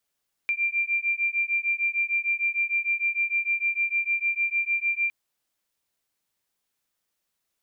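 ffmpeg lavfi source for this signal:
ffmpeg -f lavfi -i "aevalsrc='0.0501*(sin(2*PI*2370*t)+sin(2*PI*2376.6*t))':duration=4.61:sample_rate=44100" out.wav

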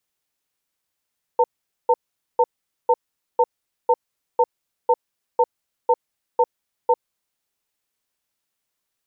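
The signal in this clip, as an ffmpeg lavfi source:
ffmpeg -f lavfi -i "aevalsrc='0.178*(sin(2*PI*490*t)+sin(2*PI*903*t))*clip(min(mod(t,0.5),0.05-mod(t,0.5))/0.005,0,1)':duration=5.62:sample_rate=44100" out.wav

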